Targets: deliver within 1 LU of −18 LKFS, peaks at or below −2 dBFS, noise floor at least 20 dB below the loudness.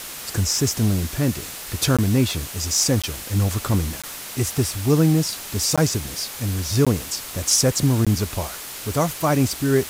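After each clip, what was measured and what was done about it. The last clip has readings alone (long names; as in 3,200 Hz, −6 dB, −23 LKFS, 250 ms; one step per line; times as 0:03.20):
number of dropouts 6; longest dropout 16 ms; background noise floor −35 dBFS; target noise floor −42 dBFS; integrated loudness −21.5 LKFS; sample peak −6.0 dBFS; target loudness −18.0 LKFS
→ repair the gap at 0:01.97/0:03.02/0:04.02/0:05.76/0:06.85/0:08.05, 16 ms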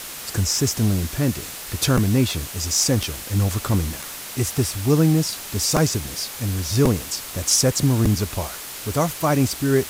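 number of dropouts 0; background noise floor −35 dBFS; target noise floor −42 dBFS
→ broadband denoise 7 dB, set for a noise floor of −35 dBFS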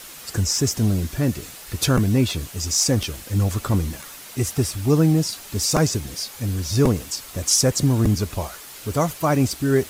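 background noise floor −40 dBFS; target noise floor −42 dBFS
→ broadband denoise 6 dB, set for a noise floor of −40 dBFS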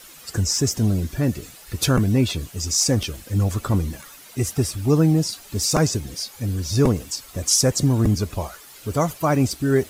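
background noise floor −45 dBFS; integrated loudness −21.5 LKFS; sample peak −6.5 dBFS; target loudness −18.0 LKFS
→ level +3.5 dB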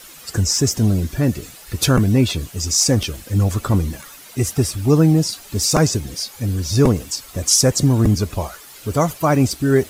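integrated loudness −18.0 LKFS; sample peak −3.0 dBFS; background noise floor −41 dBFS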